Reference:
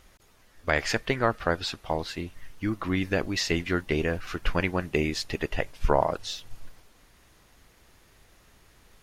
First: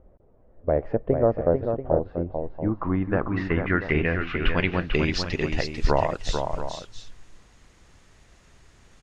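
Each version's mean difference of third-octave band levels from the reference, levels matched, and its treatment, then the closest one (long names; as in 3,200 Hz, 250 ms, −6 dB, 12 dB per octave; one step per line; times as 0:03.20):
9.0 dB: bass and treble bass +4 dB, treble −6 dB
low-pass filter sweep 560 Hz → 7,500 Hz, 0:02.13–0:05.65
multi-tap delay 445/686 ms −6/−11.5 dB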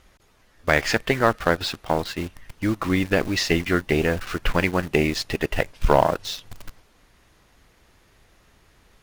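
3.5 dB: high-shelf EQ 6,500 Hz −6 dB
harmonic generator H 6 −24 dB, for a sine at −7.5 dBFS
in parallel at −4 dB: bit-depth reduction 6 bits, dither none
on the sum: level +1.5 dB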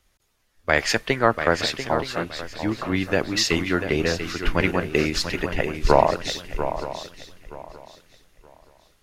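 6.0 dB: low-shelf EQ 140 Hz −4.5 dB
feedback echo with a long and a short gap by turns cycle 923 ms, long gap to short 3 to 1, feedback 35%, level −7.5 dB
multiband upward and downward expander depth 40%
level +4.5 dB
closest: second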